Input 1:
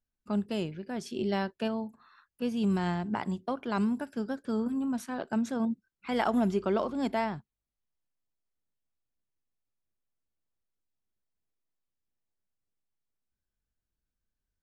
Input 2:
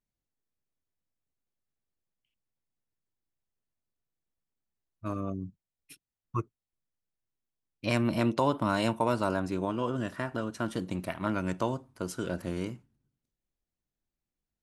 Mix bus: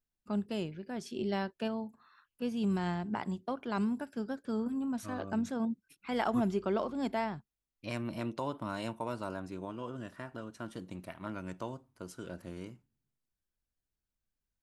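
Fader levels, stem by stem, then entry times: -3.5, -10.0 dB; 0.00, 0.00 s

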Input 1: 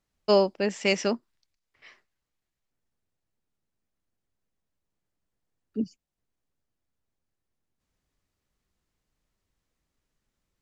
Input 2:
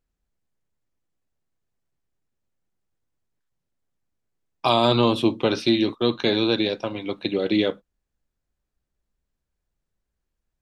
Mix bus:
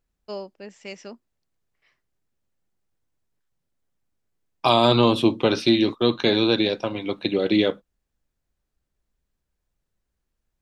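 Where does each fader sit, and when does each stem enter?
-13.5, +1.5 dB; 0.00, 0.00 s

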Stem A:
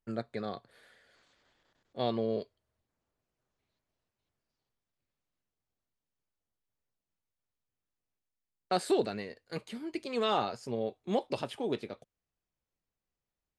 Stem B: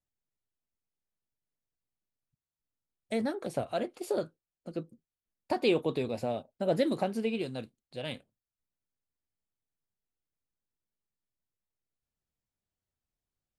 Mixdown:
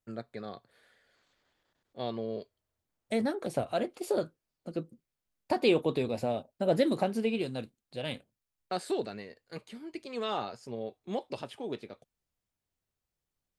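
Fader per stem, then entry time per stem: -4.0, +1.5 dB; 0.00, 0.00 s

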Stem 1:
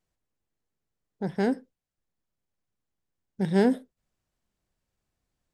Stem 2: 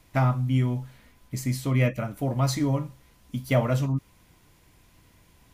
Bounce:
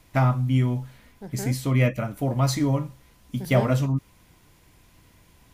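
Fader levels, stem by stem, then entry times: -9.0, +2.0 dB; 0.00, 0.00 s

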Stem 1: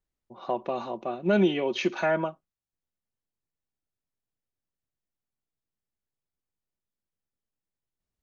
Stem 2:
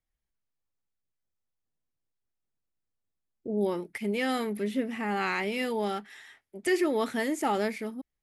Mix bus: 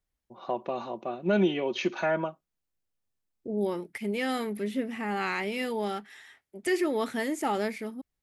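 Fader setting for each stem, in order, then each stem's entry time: -2.0, -1.0 dB; 0.00, 0.00 s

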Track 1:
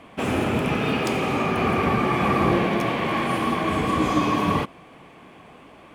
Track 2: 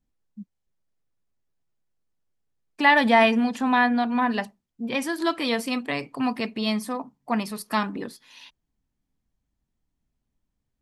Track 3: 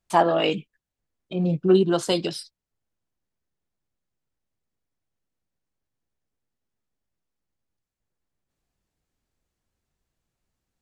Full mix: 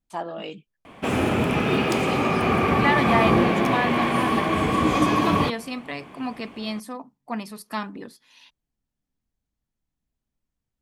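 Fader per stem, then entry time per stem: +1.0, -5.0, -12.5 dB; 0.85, 0.00, 0.00 s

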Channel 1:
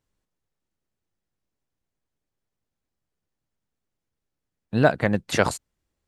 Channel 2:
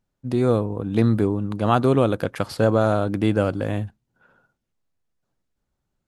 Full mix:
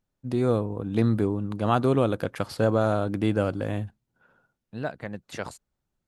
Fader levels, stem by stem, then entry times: -13.5, -4.0 dB; 0.00, 0.00 s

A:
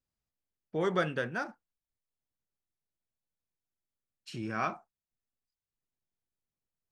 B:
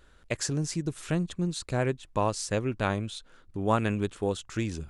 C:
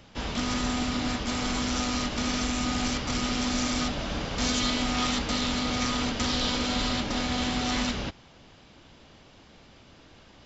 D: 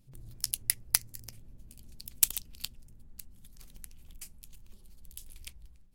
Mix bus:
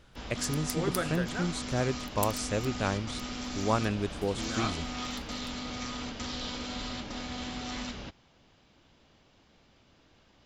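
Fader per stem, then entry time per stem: -3.0, -2.5, -9.5, -11.5 dB; 0.00, 0.00, 0.00, 0.00 s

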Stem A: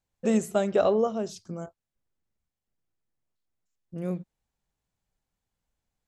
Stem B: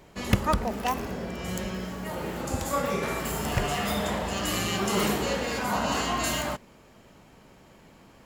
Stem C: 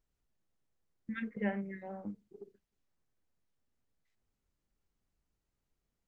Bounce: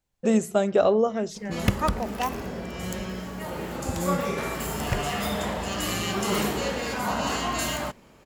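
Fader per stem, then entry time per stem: +2.5, 0.0, -1.5 dB; 0.00, 1.35, 0.00 s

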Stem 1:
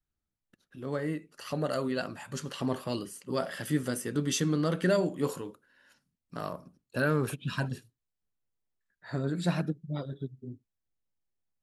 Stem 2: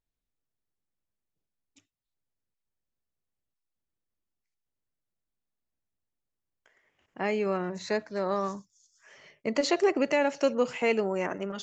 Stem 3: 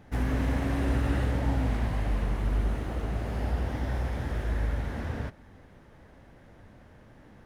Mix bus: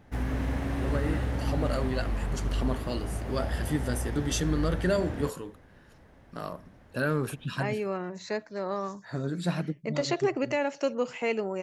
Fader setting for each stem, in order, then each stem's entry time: -0.5, -3.0, -2.5 dB; 0.00, 0.40, 0.00 s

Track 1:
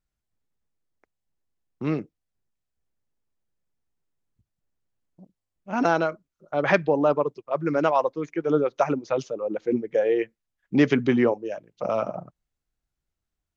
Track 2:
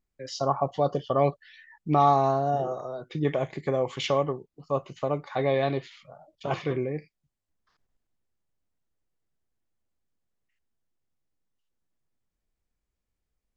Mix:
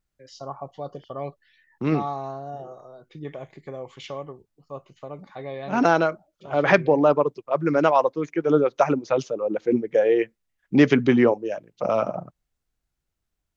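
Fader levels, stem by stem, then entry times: +3.0, -9.5 dB; 0.00, 0.00 s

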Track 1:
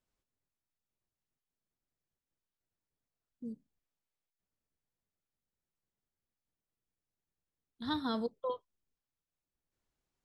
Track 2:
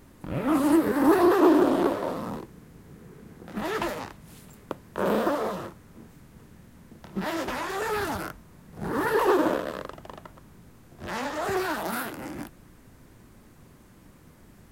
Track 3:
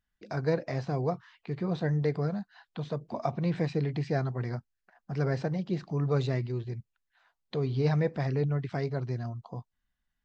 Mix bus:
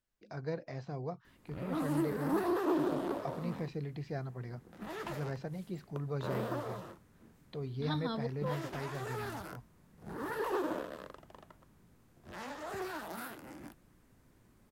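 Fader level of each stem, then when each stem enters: -3.0, -12.5, -10.0 dB; 0.00, 1.25, 0.00 s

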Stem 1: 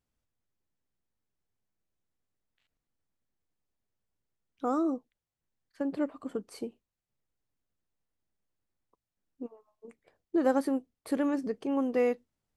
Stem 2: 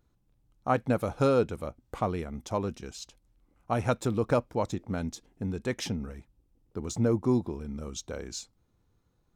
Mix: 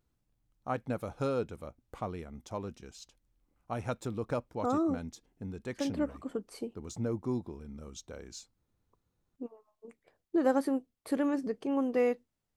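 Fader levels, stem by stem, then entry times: -1.0, -8.0 dB; 0.00, 0.00 s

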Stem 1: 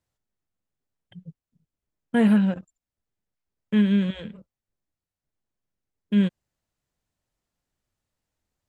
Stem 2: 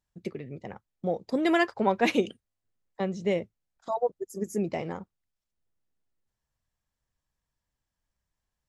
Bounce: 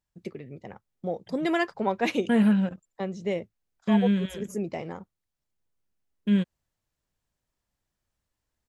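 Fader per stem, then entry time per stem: -2.5, -2.0 dB; 0.15, 0.00 s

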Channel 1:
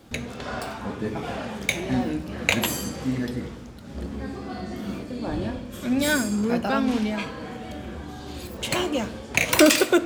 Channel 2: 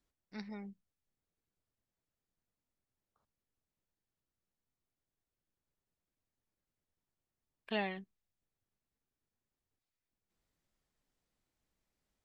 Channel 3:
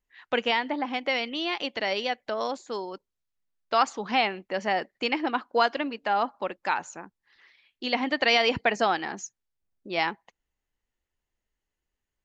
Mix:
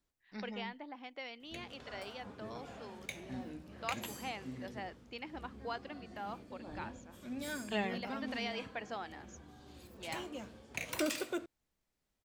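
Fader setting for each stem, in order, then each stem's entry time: -19.0, 0.0, -18.5 dB; 1.40, 0.00, 0.10 s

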